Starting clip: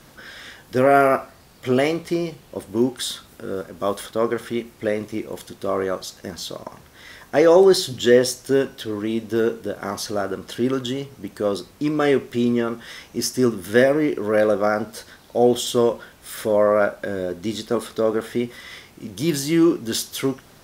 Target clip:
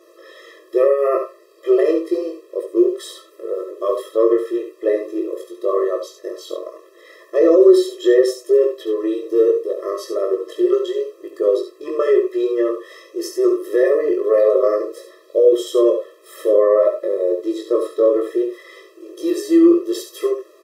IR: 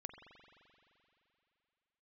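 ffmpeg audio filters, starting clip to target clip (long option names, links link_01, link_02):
-filter_complex "[0:a]flanger=delay=20:depth=2:speed=0.7,alimiter=limit=-13.5dB:level=0:latency=1,tiltshelf=frequency=860:gain=7.5,asplit=2[link_01][link_02];[link_02]aecho=0:1:70|83:0.398|0.141[link_03];[link_01][link_03]amix=inputs=2:normalize=0,afftfilt=real='re*eq(mod(floor(b*sr/1024/340),2),1)':imag='im*eq(mod(floor(b*sr/1024/340),2),1)':win_size=1024:overlap=0.75,volume=6dB"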